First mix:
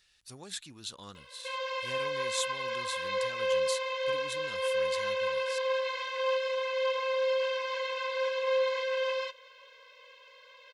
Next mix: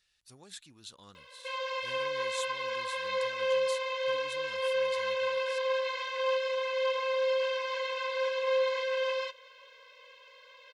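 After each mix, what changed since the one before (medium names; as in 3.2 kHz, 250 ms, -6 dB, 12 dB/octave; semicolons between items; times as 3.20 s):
speech -7.0 dB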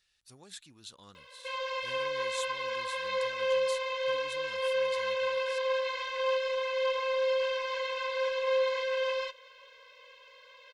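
background: remove high-pass 95 Hz 6 dB/octave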